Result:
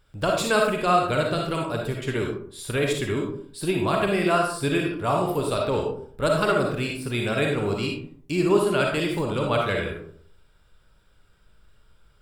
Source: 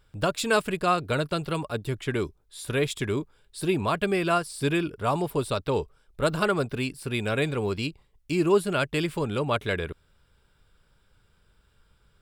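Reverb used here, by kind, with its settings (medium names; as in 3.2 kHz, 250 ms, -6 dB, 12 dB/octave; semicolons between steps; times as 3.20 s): algorithmic reverb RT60 0.59 s, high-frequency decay 0.45×, pre-delay 15 ms, DRR 0 dB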